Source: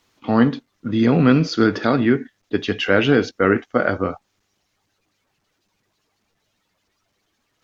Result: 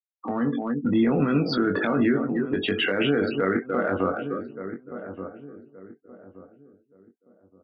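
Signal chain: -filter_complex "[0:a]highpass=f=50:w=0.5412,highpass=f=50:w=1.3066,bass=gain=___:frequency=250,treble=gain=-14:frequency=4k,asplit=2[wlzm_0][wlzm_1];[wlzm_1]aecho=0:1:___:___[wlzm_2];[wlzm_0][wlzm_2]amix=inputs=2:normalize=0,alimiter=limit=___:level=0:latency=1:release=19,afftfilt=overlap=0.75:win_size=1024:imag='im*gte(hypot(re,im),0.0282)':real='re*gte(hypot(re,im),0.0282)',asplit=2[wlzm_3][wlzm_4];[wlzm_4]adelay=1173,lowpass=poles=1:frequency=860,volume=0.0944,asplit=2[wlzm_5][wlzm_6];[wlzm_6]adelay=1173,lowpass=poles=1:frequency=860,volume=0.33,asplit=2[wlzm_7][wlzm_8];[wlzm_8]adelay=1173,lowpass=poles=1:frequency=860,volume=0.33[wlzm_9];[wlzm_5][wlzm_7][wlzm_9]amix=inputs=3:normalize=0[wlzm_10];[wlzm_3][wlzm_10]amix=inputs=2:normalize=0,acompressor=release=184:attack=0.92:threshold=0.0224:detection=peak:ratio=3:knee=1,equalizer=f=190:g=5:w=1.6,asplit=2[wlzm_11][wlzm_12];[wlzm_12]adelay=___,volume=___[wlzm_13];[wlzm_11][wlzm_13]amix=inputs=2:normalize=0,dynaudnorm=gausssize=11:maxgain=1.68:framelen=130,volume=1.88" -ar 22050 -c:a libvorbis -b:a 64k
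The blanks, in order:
-9, 293, 0.141, 0.178, 21, 0.473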